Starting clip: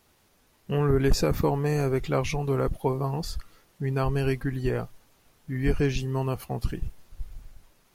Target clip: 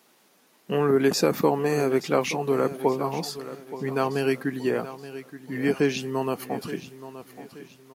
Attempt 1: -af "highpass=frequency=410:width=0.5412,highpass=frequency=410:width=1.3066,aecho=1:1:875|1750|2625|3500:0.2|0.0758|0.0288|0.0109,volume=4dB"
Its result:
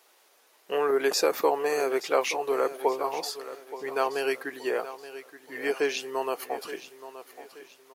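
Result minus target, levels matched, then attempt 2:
250 Hz band −8.5 dB
-af "highpass=frequency=190:width=0.5412,highpass=frequency=190:width=1.3066,aecho=1:1:875|1750|2625|3500:0.2|0.0758|0.0288|0.0109,volume=4dB"

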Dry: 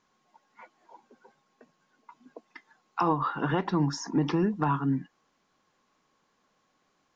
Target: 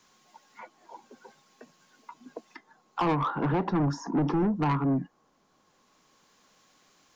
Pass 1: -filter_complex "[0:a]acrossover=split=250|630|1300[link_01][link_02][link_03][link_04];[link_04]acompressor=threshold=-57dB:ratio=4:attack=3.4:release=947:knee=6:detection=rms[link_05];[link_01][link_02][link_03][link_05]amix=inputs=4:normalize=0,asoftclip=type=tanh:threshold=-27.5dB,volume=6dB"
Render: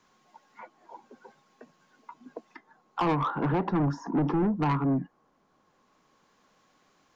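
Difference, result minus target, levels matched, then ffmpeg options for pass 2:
8,000 Hz band −7.5 dB
-filter_complex "[0:a]acrossover=split=250|630|1300[link_01][link_02][link_03][link_04];[link_04]acompressor=threshold=-57dB:ratio=4:attack=3.4:release=947:knee=6:detection=rms,highshelf=frequency=2900:gain=10[link_05];[link_01][link_02][link_03][link_05]amix=inputs=4:normalize=0,asoftclip=type=tanh:threshold=-27.5dB,volume=6dB"

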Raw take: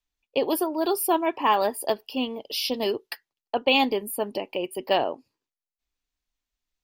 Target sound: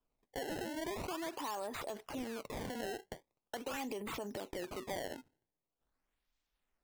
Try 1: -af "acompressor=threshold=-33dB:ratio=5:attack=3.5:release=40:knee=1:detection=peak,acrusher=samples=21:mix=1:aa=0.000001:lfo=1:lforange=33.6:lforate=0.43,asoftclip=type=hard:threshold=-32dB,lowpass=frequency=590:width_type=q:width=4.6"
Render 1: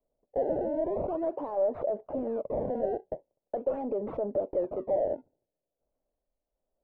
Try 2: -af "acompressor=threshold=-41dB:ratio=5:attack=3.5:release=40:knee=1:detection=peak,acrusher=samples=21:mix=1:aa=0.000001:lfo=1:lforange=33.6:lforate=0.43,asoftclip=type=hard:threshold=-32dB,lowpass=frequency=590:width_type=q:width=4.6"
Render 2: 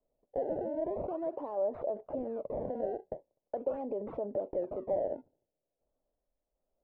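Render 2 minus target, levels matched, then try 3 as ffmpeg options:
500 Hz band +4.0 dB
-af "acompressor=threshold=-41dB:ratio=5:attack=3.5:release=40:knee=1:detection=peak,acrusher=samples=21:mix=1:aa=0.000001:lfo=1:lforange=33.6:lforate=0.43,asoftclip=type=hard:threshold=-32dB"

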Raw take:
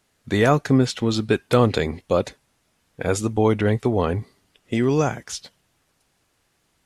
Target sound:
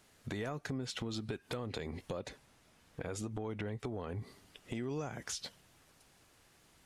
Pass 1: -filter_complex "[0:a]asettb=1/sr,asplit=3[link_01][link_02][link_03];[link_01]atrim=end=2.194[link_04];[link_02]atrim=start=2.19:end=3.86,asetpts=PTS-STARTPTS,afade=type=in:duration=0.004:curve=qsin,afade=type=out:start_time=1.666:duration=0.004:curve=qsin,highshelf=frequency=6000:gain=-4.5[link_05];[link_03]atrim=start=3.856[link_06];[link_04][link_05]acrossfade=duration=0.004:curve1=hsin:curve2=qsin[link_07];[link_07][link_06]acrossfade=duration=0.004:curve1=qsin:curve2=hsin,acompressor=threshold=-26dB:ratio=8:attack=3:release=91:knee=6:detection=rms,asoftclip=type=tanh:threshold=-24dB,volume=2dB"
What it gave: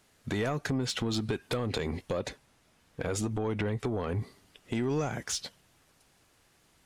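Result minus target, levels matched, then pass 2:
downward compressor: peak gain reduction −10 dB
-filter_complex "[0:a]asettb=1/sr,asplit=3[link_01][link_02][link_03];[link_01]atrim=end=2.194[link_04];[link_02]atrim=start=2.19:end=3.86,asetpts=PTS-STARTPTS,afade=type=in:duration=0.004:curve=qsin,afade=type=out:start_time=1.666:duration=0.004:curve=qsin,highshelf=frequency=6000:gain=-4.5[link_05];[link_03]atrim=start=3.856[link_06];[link_04][link_05]acrossfade=duration=0.004:curve1=hsin:curve2=qsin[link_07];[link_07][link_06]acrossfade=duration=0.004:curve1=qsin:curve2=hsin,acompressor=threshold=-37.5dB:ratio=8:attack=3:release=91:knee=6:detection=rms,asoftclip=type=tanh:threshold=-24dB,volume=2dB"

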